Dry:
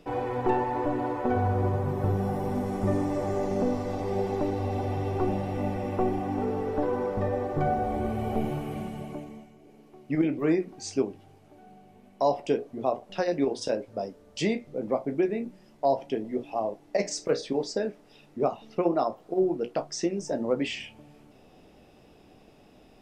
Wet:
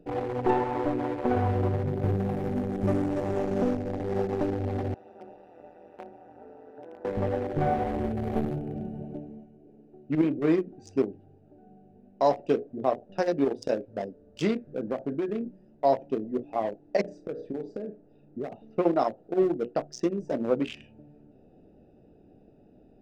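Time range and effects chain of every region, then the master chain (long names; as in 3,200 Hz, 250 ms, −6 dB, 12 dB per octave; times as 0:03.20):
0:04.94–0:07.05: high-pass filter 940 Hz + amplitude modulation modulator 170 Hz, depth 80%
0:14.56–0:15.39: parametric band 1,600 Hz +12.5 dB 0.32 octaves + downward compressor 10 to 1, threshold −24 dBFS
0:17.01–0:18.52: high-shelf EQ 2,500 Hz −10.5 dB + downward compressor 4 to 1, threshold −30 dBFS + flutter between parallel walls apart 5.7 metres, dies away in 0.21 s
whole clip: adaptive Wiener filter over 41 samples; low-shelf EQ 110 Hz −4 dB; level +2 dB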